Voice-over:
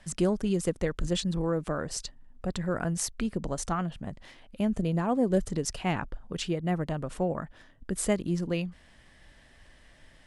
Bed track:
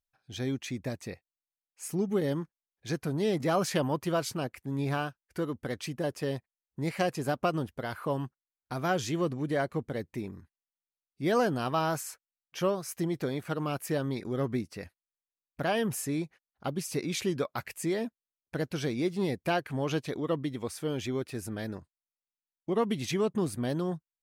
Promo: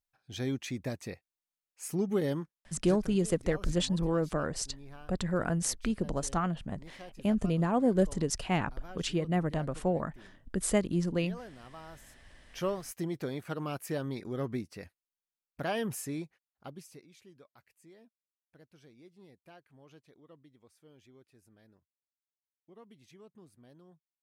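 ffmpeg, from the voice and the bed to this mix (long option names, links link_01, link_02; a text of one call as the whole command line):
ffmpeg -i stem1.wav -i stem2.wav -filter_complex "[0:a]adelay=2650,volume=-0.5dB[link_01];[1:a]volume=15dB,afade=type=out:start_time=2.24:duration=0.94:silence=0.112202,afade=type=in:start_time=12.06:duration=0.43:silence=0.158489,afade=type=out:start_time=15.96:duration=1.11:silence=0.0749894[link_02];[link_01][link_02]amix=inputs=2:normalize=0" out.wav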